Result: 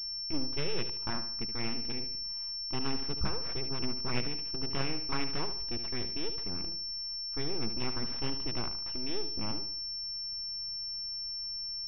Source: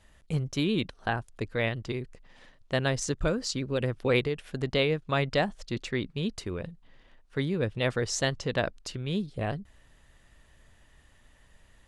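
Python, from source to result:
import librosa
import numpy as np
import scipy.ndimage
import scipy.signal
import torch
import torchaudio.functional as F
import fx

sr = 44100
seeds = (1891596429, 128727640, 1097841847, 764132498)

y = fx.band_shelf(x, sr, hz=570.0, db=-8.5, octaves=1.1)
y = fx.fixed_phaser(y, sr, hz=1700.0, stages=6)
y = np.abs(y)
y = fx.echo_feedback(y, sr, ms=74, feedback_pct=41, wet_db=-10.5)
y = fx.pwm(y, sr, carrier_hz=5400.0)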